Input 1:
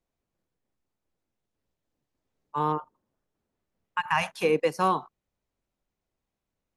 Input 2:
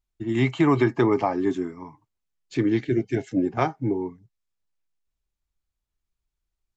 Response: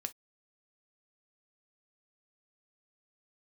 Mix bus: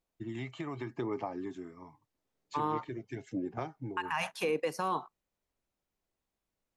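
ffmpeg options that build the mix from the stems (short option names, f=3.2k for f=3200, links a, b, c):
-filter_complex "[0:a]deesser=0.7,volume=-3dB,asplit=2[a][b];[b]volume=-15.5dB[c];[1:a]acompressor=threshold=-26dB:ratio=4,aphaser=in_gain=1:out_gain=1:delay=1.7:decay=0.34:speed=0.86:type=sinusoidal,equalizer=f=86:t=o:w=1.7:g=3.5,volume=-9dB[d];[2:a]atrim=start_sample=2205[e];[c][e]afir=irnorm=-1:irlink=0[f];[a][d][f]amix=inputs=3:normalize=0,lowshelf=f=130:g=-8.5,alimiter=limit=-22.5dB:level=0:latency=1:release=51"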